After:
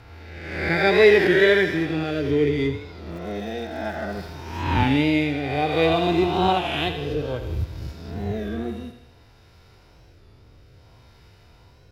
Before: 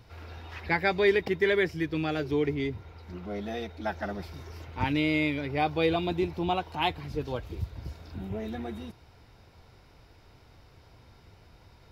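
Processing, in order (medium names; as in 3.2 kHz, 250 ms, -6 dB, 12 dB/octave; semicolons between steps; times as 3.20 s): reverse spectral sustain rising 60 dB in 1.23 s; band-stop 2.2 kHz, Q 28; harmonic-percussive split harmonic +6 dB; in parallel at -6 dB: crossover distortion -32.5 dBFS; on the sum: rotary cabinet horn 0.6 Hz; on a send: thinning echo 81 ms, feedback 63%, high-pass 340 Hz, level -9 dB; 3.11–4.32 s: on the sum: crackle 170 per s -40 dBFS; warped record 33 1/3 rpm, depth 100 cents; trim -1.5 dB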